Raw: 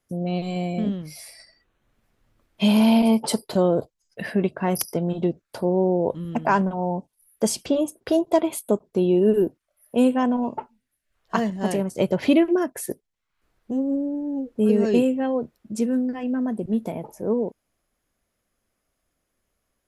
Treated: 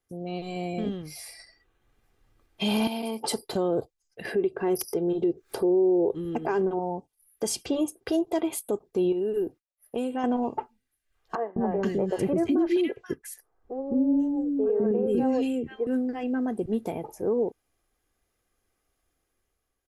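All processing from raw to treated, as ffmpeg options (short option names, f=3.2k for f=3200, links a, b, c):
-filter_complex "[0:a]asettb=1/sr,asplit=3[a][b][c];[a]atrim=end=2.874[d];[b]atrim=start=2.87:end=3.27,asetpts=PTS-STARTPTS,afade=t=in:d=0.004:c=qsin,afade=t=out:st=0.396:d=0.004:c=qsin,highpass=180,highshelf=f=5.1k:g=6.5,acompressor=threshold=-24dB:ratio=6:attack=3.2:release=140:knee=1:detection=peak[e];[c]atrim=start=3.266[f];[d][e]acrossfade=d=0.004:c1=hsin:c2=qsin[g];[g][f]acrossfade=d=0.004:c1=qsin:c2=hsin,asettb=1/sr,asplit=3[h][i][j];[h]atrim=end=4.254[k];[i]atrim=start=4.25:end=6.79,asetpts=PTS-STARTPTS,afade=t=in:d=0.004:c=qsin,afade=t=out:st=2.536:d=0.004:c=qsin,equalizer=f=390:t=o:w=0.57:g=12.5,acompressor=mode=upward:threshold=-19dB:ratio=2.5:attack=3.2:release=140:knee=2.83:detection=peak[l];[j]atrim=start=6.786[m];[k][l]acrossfade=d=0.004:c1=hsin:c2=qsin[n];[n][m]acrossfade=d=0.004:c1=qsin:c2=hsin,asettb=1/sr,asplit=3[o][p][q];[o]atrim=end=9.124[r];[p]atrim=start=9.12:end=10.24,asetpts=PTS-STARTPTS,afade=t=in:d=0.004:c=qsin,afade=t=out:st=1.116:d=0.004:c=qsin,agate=range=-33dB:threshold=-57dB:ratio=3:release=100:detection=peak,acompressor=threshold=-25dB:ratio=4:attack=3.2:release=140:knee=1:detection=peak[s];[q]atrim=start=10.236[t];[r][s]acrossfade=d=0.004:c1=hsin:c2=qsin[u];[u][t]acrossfade=d=0.004:c1=qsin:c2=hsin,asettb=1/sr,asplit=3[v][w][x];[v]atrim=end=11.354[y];[w]atrim=start=11.35:end=15.87,asetpts=PTS-STARTPTS,afade=t=in:d=0.004:c=qsin,afade=t=out:st=4.516:d=0.004:c=qsin,tiltshelf=f=1.5k:g=5.5,acrossover=split=410|1600[z][aa][ab];[z]adelay=210[ac];[ab]adelay=480[ad];[ac][aa][ad]amix=inputs=3:normalize=0,atrim=end_sample=199332[ae];[x]atrim=start=15.866[af];[y][ae]acrossfade=d=0.004:c1=hsin:c2=qsin[ag];[ag][af]acrossfade=d=0.004:c1=qsin:c2=hsin,aecho=1:1:2.5:0.45,dynaudnorm=f=190:g=7:m=6dB,alimiter=limit=-10dB:level=0:latency=1:release=64,volume=-7dB"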